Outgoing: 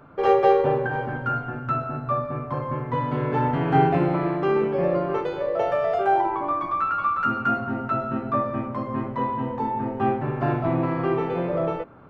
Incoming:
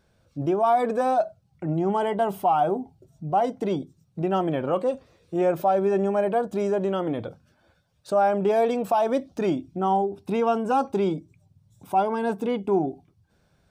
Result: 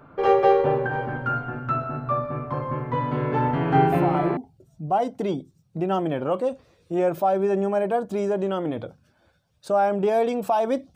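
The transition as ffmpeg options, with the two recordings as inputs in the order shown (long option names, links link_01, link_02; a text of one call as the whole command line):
ffmpeg -i cue0.wav -i cue1.wav -filter_complex "[1:a]asplit=2[link_01][link_02];[0:a]apad=whole_dur=10.95,atrim=end=10.95,atrim=end=4.372[link_03];[link_02]atrim=start=2.788:end=9.37[link_04];[link_01]atrim=start=2.29:end=2.79,asetpts=PTS-STARTPTS,volume=-6dB,afade=type=in:duration=0.004:curve=hsin,afade=type=out:start_time=0.496:duration=0.004:curve=hsin,adelay=3870[link_05];[link_03][link_04]acrossfade=duration=0.004:curve1=hsin:curve2=hsin[link_06];[link_06][link_05]amix=inputs=2:normalize=0" out.wav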